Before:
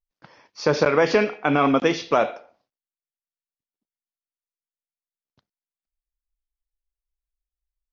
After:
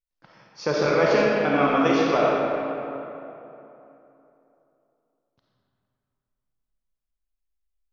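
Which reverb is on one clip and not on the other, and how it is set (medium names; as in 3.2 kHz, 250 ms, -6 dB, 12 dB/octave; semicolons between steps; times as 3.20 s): algorithmic reverb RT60 3.1 s, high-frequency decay 0.55×, pre-delay 10 ms, DRR -4 dB; trim -5.5 dB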